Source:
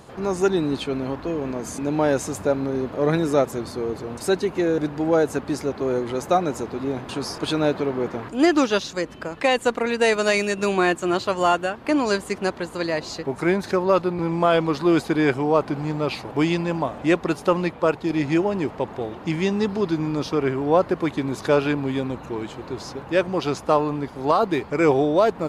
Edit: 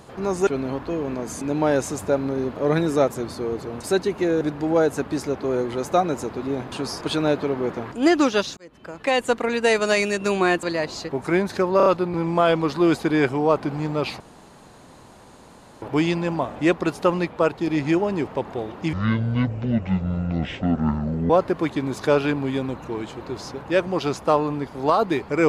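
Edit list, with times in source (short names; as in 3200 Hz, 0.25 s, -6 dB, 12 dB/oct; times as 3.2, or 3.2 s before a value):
0.47–0.84 cut
8.94–9.58 fade in
11–12.77 cut
13.91 stutter 0.03 s, 4 plays
16.25 insert room tone 1.62 s
19.36–20.71 speed 57%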